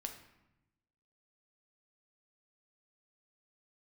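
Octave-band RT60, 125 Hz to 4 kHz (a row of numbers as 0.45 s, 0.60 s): 1.3 s, 1.3 s, 0.90 s, 0.90 s, 0.85 s, 0.65 s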